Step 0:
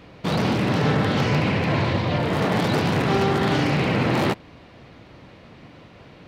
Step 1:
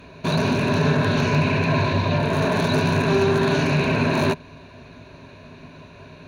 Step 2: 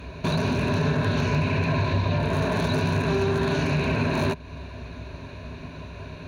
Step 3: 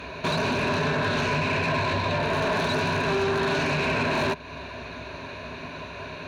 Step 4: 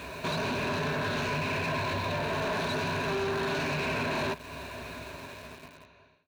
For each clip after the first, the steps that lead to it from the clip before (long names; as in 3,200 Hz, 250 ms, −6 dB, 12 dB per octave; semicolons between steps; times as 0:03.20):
EQ curve with evenly spaced ripples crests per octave 1.5, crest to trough 12 dB; in parallel at −2 dB: brickwall limiter −16 dBFS, peak gain reduction 10 dB; on the sum: level −4 dB
parametric band 68 Hz +14 dB 0.73 octaves; downward compressor 2 to 1, threshold −29 dBFS, peak gain reduction 8.5 dB; level +2.5 dB
mid-hump overdrive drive 18 dB, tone 4,200 Hz, clips at −12 dBFS; level −4 dB
fade-out on the ending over 1.37 s; in parallel at −12 dB: log-companded quantiser 2 bits; on the sum: level −7.5 dB